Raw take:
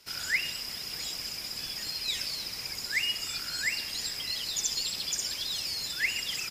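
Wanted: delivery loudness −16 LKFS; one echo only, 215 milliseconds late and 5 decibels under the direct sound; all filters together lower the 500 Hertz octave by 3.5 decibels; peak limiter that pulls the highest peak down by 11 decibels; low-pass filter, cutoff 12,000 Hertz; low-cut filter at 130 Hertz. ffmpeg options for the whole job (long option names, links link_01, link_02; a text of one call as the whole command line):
ffmpeg -i in.wav -af "highpass=130,lowpass=12000,equalizer=frequency=500:width_type=o:gain=-4.5,alimiter=level_in=3dB:limit=-24dB:level=0:latency=1,volume=-3dB,aecho=1:1:215:0.562,volume=17dB" out.wav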